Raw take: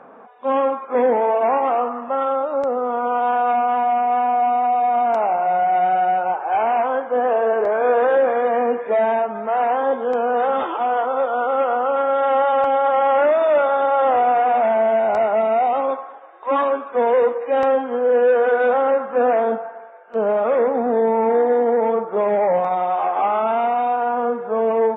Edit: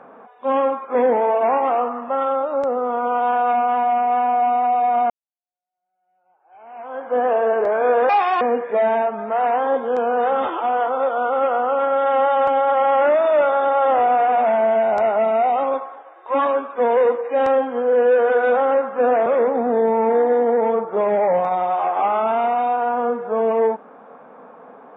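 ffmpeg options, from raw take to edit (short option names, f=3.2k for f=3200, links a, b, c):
-filter_complex "[0:a]asplit=5[a][b][c][d][e];[a]atrim=end=5.1,asetpts=PTS-STARTPTS,afade=t=out:st=5.096:d=0.004:c=hsin[f];[b]atrim=start=5.1:end=8.094,asetpts=PTS-STARTPTS,afade=t=in:d=2.03:c=exp[g];[c]atrim=start=8.09:end=8.58,asetpts=PTS-STARTPTS,asetrate=67032,aresample=44100,atrim=end_sample=14216,asetpts=PTS-STARTPTS[h];[d]atrim=start=8.576:end=19.432[i];[e]atrim=start=20.458[j];[f][g]concat=n=2:v=0:a=1[k];[k][h]acrossfade=d=0.004:c1=hsin:c2=hsin[l];[l][i]acrossfade=d=0.004:c1=hsin:c2=hsin[m];[m][j]acrossfade=d=0.004:c1=hsin:c2=hsin"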